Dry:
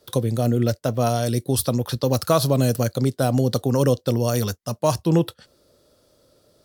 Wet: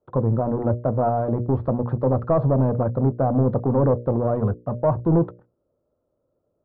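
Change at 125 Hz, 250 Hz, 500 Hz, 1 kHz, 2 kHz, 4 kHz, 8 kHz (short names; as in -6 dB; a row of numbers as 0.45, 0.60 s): 0.0 dB, 0.0 dB, +0.5 dB, +1.0 dB, n/a, under -35 dB, under -40 dB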